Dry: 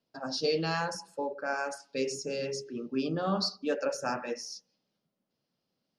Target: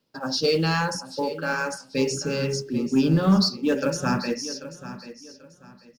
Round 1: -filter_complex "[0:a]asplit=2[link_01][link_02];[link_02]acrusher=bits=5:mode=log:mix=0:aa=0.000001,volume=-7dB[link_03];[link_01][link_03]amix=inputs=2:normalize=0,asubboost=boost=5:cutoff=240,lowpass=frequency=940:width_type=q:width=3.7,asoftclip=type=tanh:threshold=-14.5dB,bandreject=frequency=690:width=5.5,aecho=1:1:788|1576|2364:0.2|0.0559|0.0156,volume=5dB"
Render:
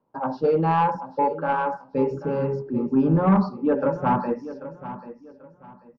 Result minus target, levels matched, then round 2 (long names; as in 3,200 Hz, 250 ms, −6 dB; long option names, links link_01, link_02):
1,000 Hz band +7.0 dB
-filter_complex "[0:a]asplit=2[link_01][link_02];[link_02]acrusher=bits=5:mode=log:mix=0:aa=0.000001,volume=-7dB[link_03];[link_01][link_03]amix=inputs=2:normalize=0,asubboost=boost=5:cutoff=240,asoftclip=type=tanh:threshold=-14.5dB,bandreject=frequency=690:width=5.5,aecho=1:1:788|1576|2364:0.2|0.0559|0.0156,volume=5dB"